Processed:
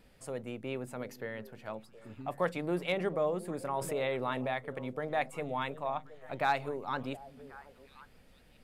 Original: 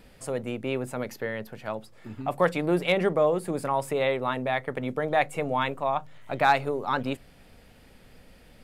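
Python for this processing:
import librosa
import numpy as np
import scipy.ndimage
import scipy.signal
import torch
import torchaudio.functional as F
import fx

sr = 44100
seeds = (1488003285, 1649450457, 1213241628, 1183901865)

y = fx.echo_stepped(x, sr, ms=360, hz=190.0, octaves=1.4, feedback_pct=70, wet_db=-11.5)
y = fx.env_flatten(y, sr, amount_pct=50, at=(3.81, 4.54))
y = F.gain(torch.from_numpy(y), -8.5).numpy()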